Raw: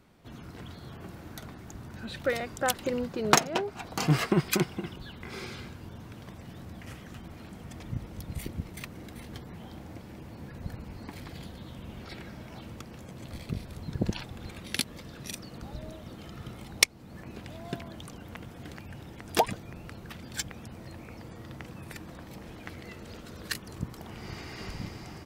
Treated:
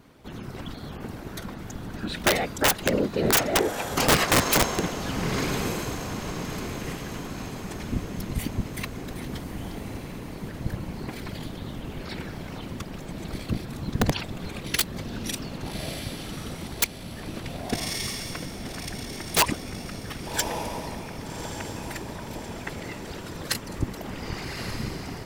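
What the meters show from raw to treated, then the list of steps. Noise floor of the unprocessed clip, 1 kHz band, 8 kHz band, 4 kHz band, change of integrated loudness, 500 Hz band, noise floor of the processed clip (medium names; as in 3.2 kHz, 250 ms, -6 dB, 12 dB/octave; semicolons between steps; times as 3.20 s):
-47 dBFS, +5.0 dB, +6.5 dB, +6.5 dB, +5.5 dB, +5.5 dB, -39 dBFS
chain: whisper effect; echo that smears into a reverb 1180 ms, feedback 50%, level -9.5 dB; integer overflow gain 19.5 dB; trim +7 dB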